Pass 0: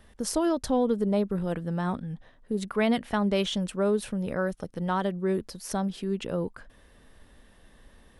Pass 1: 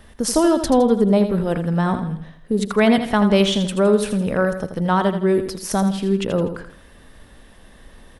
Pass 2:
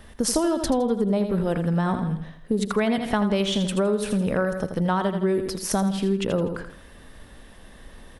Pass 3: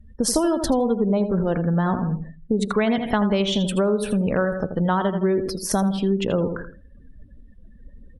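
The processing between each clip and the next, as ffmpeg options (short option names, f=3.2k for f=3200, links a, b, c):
-af "aecho=1:1:82|164|246|328:0.355|0.142|0.0568|0.0227,volume=9dB"
-af "acompressor=threshold=-19dB:ratio=6"
-af "afftdn=nr=34:nf=-40,volume=2dB"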